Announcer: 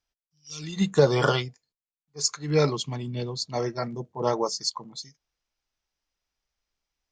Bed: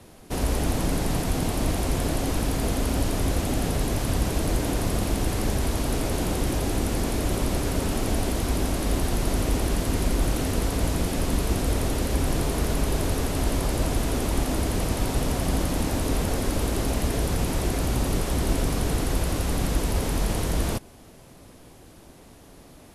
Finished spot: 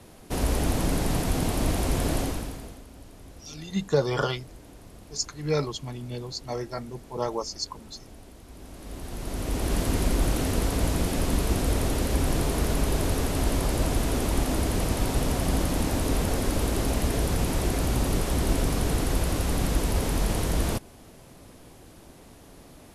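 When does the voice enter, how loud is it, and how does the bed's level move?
2.95 s, -4.0 dB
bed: 2.2 s -0.5 dB
2.86 s -22.5 dB
8.46 s -22.5 dB
9.77 s -0.5 dB

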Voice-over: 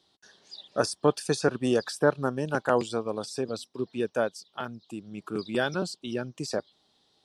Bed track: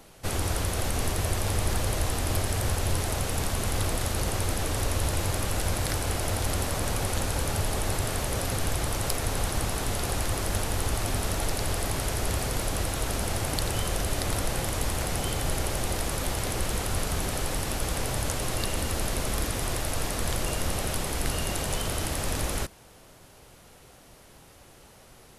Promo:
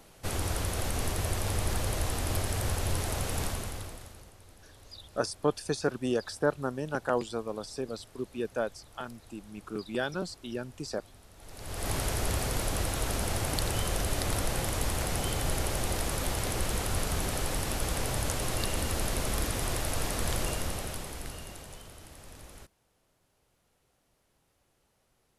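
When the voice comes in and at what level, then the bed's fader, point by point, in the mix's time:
4.40 s, -4.5 dB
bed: 3.46 s -3.5 dB
4.36 s -27 dB
11.33 s -27 dB
11.9 s -2 dB
20.43 s -2 dB
21.96 s -20 dB

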